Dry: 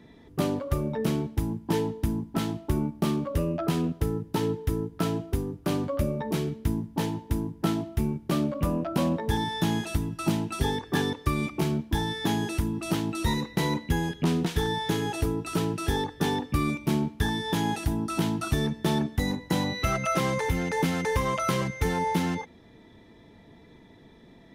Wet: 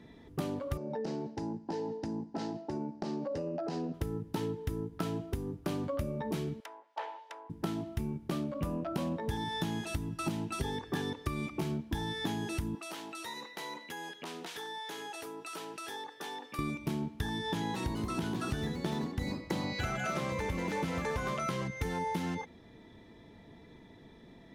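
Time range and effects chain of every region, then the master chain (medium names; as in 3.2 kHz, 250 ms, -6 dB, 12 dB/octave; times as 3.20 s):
0.77–3.94 s: cabinet simulation 210–6400 Hz, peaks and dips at 510 Hz +5 dB, 790 Hz +8 dB, 1.2 kHz -10 dB, 2.3 kHz -7 dB, 3.3 kHz -10 dB, 4.9 kHz +5 dB + compression, threshold -29 dBFS
6.60–7.50 s: low-pass that closes with the level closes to 1.7 kHz, closed at -24 dBFS + steep high-pass 560 Hz
12.75–16.59 s: high-pass 570 Hz + compression 3:1, threshold -38 dBFS
17.38–21.77 s: treble shelf 11 kHz -7.5 dB + ever faster or slower copies 230 ms, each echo +2 st, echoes 2, each echo -6 dB
whole clip: compression, threshold -29 dBFS; treble shelf 12 kHz -4 dB; trim -2 dB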